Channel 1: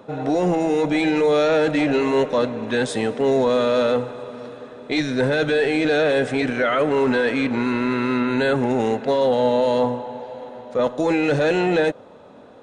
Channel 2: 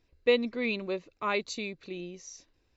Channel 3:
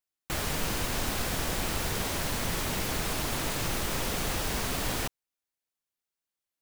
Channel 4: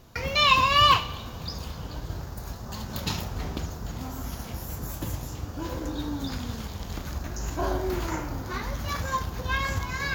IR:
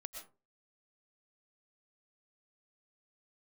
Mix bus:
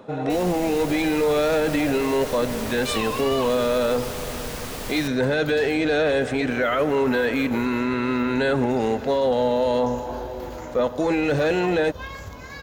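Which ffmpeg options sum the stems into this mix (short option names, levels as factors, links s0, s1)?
-filter_complex "[0:a]volume=1[s0];[1:a]volume=0.501[s1];[2:a]volume=0.631,asplit=2[s2][s3];[s3]volume=0.422[s4];[3:a]adelay=2500,volume=0.376[s5];[4:a]atrim=start_sample=2205[s6];[s4][s6]afir=irnorm=-1:irlink=0[s7];[s0][s1][s2][s5][s7]amix=inputs=5:normalize=0,alimiter=limit=0.211:level=0:latency=1:release=74"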